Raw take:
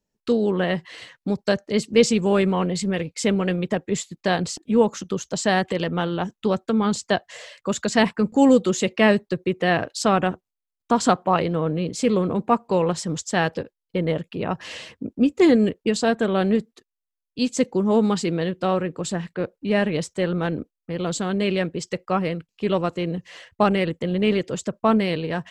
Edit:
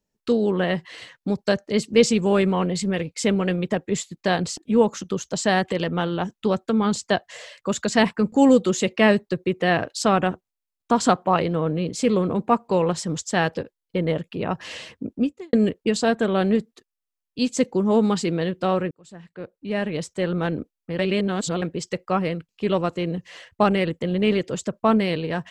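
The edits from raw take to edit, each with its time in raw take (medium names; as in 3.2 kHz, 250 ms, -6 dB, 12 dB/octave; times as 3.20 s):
15.17–15.53 s: fade out quadratic
18.91–20.41 s: fade in
20.99–21.62 s: reverse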